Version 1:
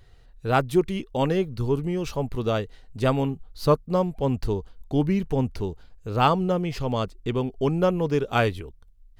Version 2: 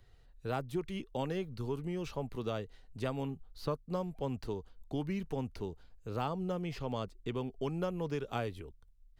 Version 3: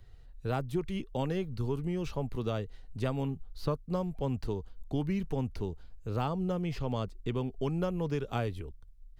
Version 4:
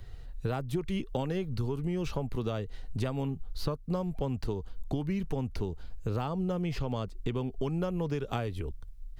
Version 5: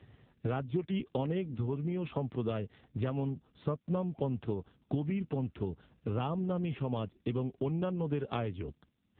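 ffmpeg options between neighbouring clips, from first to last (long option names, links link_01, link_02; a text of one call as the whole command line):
ffmpeg -i in.wav -filter_complex "[0:a]acrossover=split=140|850|4200[link_01][link_02][link_03][link_04];[link_01]acompressor=threshold=-36dB:ratio=4[link_05];[link_02]acompressor=threshold=-26dB:ratio=4[link_06];[link_03]acompressor=threshold=-34dB:ratio=4[link_07];[link_04]acompressor=threshold=-48dB:ratio=4[link_08];[link_05][link_06][link_07][link_08]amix=inputs=4:normalize=0,volume=-8.5dB" out.wav
ffmpeg -i in.wav -af "lowshelf=frequency=160:gain=8,volume=1.5dB" out.wav
ffmpeg -i in.wav -af "acompressor=threshold=-38dB:ratio=5,volume=9dB" out.wav
ffmpeg -i in.wav -ar 8000 -c:a libopencore_amrnb -b:a 5900 out.amr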